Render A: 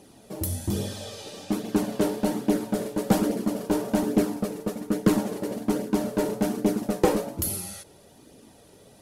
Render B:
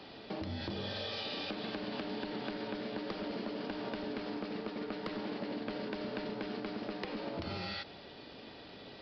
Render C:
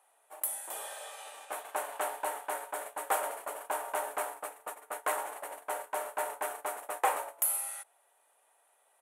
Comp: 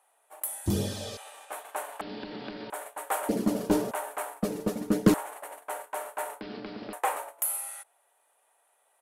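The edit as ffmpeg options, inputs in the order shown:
-filter_complex "[0:a]asplit=3[s0][s1][s2];[1:a]asplit=2[s3][s4];[2:a]asplit=6[s5][s6][s7][s8][s9][s10];[s5]atrim=end=0.662[s11];[s0]atrim=start=0.658:end=1.172[s12];[s6]atrim=start=1.168:end=2.012[s13];[s3]atrim=start=2.008:end=2.702[s14];[s7]atrim=start=2.698:end=3.292[s15];[s1]atrim=start=3.288:end=3.912[s16];[s8]atrim=start=3.908:end=4.432[s17];[s2]atrim=start=4.428:end=5.142[s18];[s9]atrim=start=5.138:end=6.412[s19];[s4]atrim=start=6.408:end=6.932[s20];[s10]atrim=start=6.928[s21];[s11][s12]acrossfade=d=0.004:c1=hsin:c2=hsin[s22];[s22][s13]acrossfade=d=0.004:c1=hsin:c2=hsin[s23];[s23][s14]acrossfade=d=0.004:c1=hsin:c2=hsin[s24];[s24][s15]acrossfade=d=0.004:c1=hsin:c2=hsin[s25];[s25][s16]acrossfade=d=0.004:c1=hsin:c2=hsin[s26];[s26][s17]acrossfade=d=0.004:c1=hsin:c2=hsin[s27];[s27][s18]acrossfade=d=0.004:c1=hsin:c2=hsin[s28];[s28][s19]acrossfade=d=0.004:c1=hsin:c2=hsin[s29];[s29][s20]acrossfade=d=0.004:c1=hsin:c2=hsin[s30];[s30][s21]acrossfade=d=0.004:c1=hsin:c2=hsin"

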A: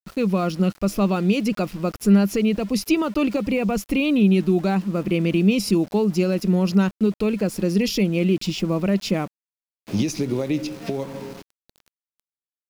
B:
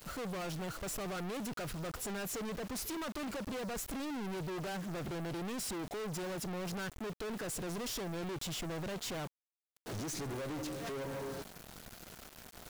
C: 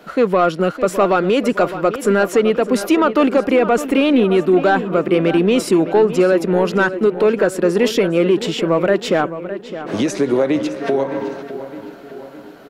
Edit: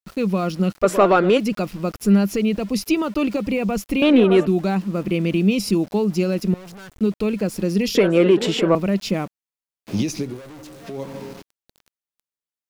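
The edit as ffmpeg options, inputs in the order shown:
-filter_complex "[2:a]asplit=3[s0][s1][s2];[1:a]asplit=2[s3][s4];[0:a]asplit=6[s5][s6][s7][s8][s9][s10];[s5]atrim=end=0.84[s11];[s0]atrim=start=0.82:end=1.39[s12];[s6]atrim=start=1.37:end=4.022[s13];[s1]atrim=start=4.018:end=4.472[s14];[s7]atrim=start=4.468:end=6.542[s15];[s3]atrim=start=6.538:end=6.992[s16];[s8]atrim=start=6.988:end=7.952[s17];[s2]atrim=start=7.948:end=8.752[s18];[s9]atrim=start=8.748:end=10.41[s19];[s4]atrim=start=10.17:end=11.06[s20];[s10]atrim=start=10.82[s21];[s11][s12]acrossfade=d=0.02:c1=tri:c2=tri[s22];[s22][s13]acrossfade=d=0.02:c1=tri:c2=tri[s23];[s23][s14]acrossfade=d=0.004:c1=hsin:c2=hsin[s24];[s24][s15]acrossfade=d=0.004:c1=hsin:c2=hsin[s25];[s25][s16]acrossfade=d=0.004:c1=hsin:c2=hsin[s26];[s26][s17]acrossfade=d=0.004:c1=hsin:c2=hsin[s27];[s27][s18]acrossfade=d=0.004:c1=hsin:c2=hsin[s28];[s28][s19]acrossfade=d=0.004:c1=hsin:c2=hsin[s29];[s29][s20]acrossfade=d=0.24:c1=tri:c2=tri[s30];[s30][s21]acrossfade=d=0.24:c1=tri:c2=tri"

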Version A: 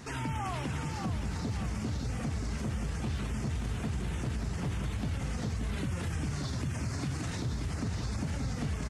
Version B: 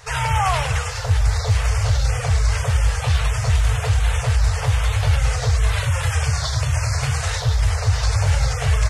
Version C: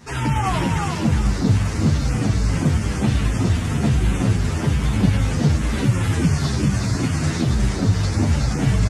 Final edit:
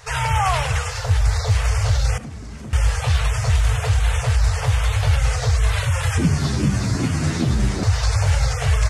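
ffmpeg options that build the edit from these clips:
-filter_complex "[1:a]asplit=3[s0][s1][s2];[s0]atrim=end=2.182[s3];[0:a]atrim=start=2.178:end=2.732[s4];[s1]atrim=start=2.728:end=6.182[s5];[2:a]atrim=start=6.178:end=7.832[s6];[s2]atrim=start=7.828[s7];[s3][s4]acrossfade=d=0.004:c1=hsin:c2=hsin[s8];[s8][s5]acrossfade=d=0.004:c1=hsin:c2=hsin[s9];[s9][s6]acrossfade=d=0.004:c1=hsin:c2=hsin[s10];[s10][s7]acrossfade=d=0.004:c1=hsin:c2=hsin"

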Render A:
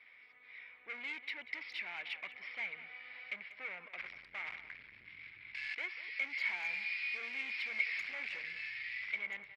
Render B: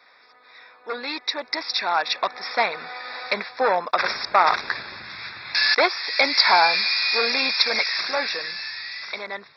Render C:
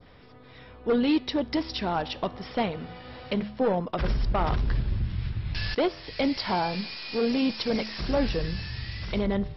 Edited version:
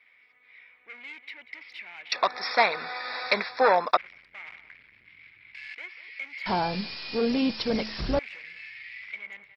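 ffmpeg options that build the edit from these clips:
-filter_complex "[0:a]asplit=3[s0][s1][s2];[s0]atrim=end=2.122[s3];[1:a]atrim=start=2.118:end=3.972[s4];[s1]atrim=start=3.968:end=6.462[s5];[2:a]atrim=start=6.458:end=8.192[s6];[s2]atrim=start=8.188[s7];[s3][s4]acrossfade=d=0.004:c1=hsin:c2=hsin[s8];[s8][s5]acrossfade=d=0.004:c1=hsin:c2=hsin[s9];[s9][s6]acrossfade=d=0.004:c1=hsin:c2=hsin[s10];[s10][s7]acrossfade=d=0.004:c1=hsin:c2=hsin"

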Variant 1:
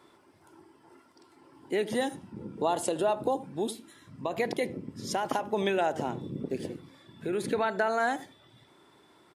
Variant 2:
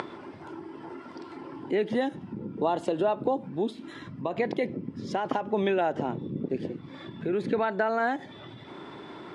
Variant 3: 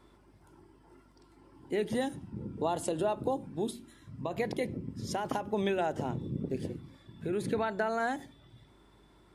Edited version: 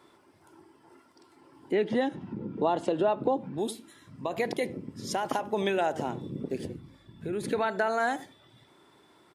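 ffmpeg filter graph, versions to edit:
-filter_complex "[0:a]asplit=3[s0][s1][s2];[s0]atrim=end=1.722[s3];[1:a]atrim=start=1.718:end=3.582[s4];[s1]atrim=start=3.578:end=6.652[s5];[2:a]atrim=start=6.648:end=7.432[s6];[s2]atrim=start=7.428[s7];[s3][s4]acrossfade=d=0.004:c1=hsin:c2=hsin[s8];[s8][s5]acrossfade=d=0.004:c1=hsin:c2=hsin[s9];[s9][s6]acrossfade=d=0.004:c1=hsin:c2=hsin[s10];[s10][s7]acrossfade=d=0.004:c1=hsin:c2=hsin"

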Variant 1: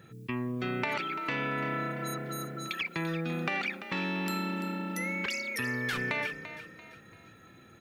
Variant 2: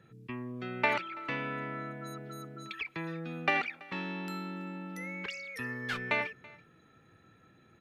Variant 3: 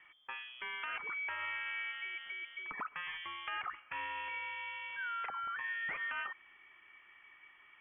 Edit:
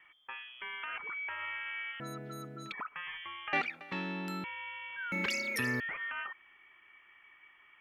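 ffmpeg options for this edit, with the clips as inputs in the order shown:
-filter_complex "[1:a]asplit=2[s0][s1];[2:a]asplit=4[s2][s3][s4][s5];[s2]atrim=end=2.002[s6];[s0]atrim=start=1.998:end=2.722[s7];[s3]atrim=start=2.718:end=3.532[s8];[s1]atrim=start=3.528:end=4.442[s9];[s4]atrim=start=4.438:end=5.122[s10];[0:a]atrim=start=5.118:end=5.802[s11];[s5]atrim=start=5.798[s12];[s6][s7]acrossfade=d=0.004:c1=hsin:c2=hsin[s13];[s13][s8]acrossfade=d=0.004:c1=hsin:c2=hsin[s14];[s14][s9]acrossfade=d=0.004:c1=hsin:c2=hsin[s15];[s15][s10]acrossfade=d=0.004:c1=hsin:c2=hsin[s16];[s16][s11]acrossfade=d=0.004:c1=hsin:c2=hsin[s17];[s17][s12]acrossfade=d=0.004:c1=hsin:c2=hsin"

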